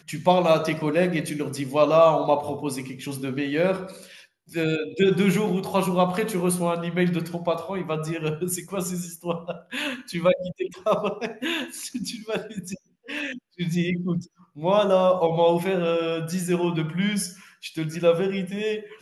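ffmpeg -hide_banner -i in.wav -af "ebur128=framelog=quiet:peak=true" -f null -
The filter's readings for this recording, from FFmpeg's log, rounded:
Integrated loudness:
  I:         -24.5 LUFS
  Threshold: -34.8 LUFS
Loudness range:
  LRA:         5.9 LU
  Threshold: -45.1 LUFS
  LRA low:   -28.9 LUFS
  LRA high:  -23.0 LUFS
True peak:
  Peak:       -5.0 dBFS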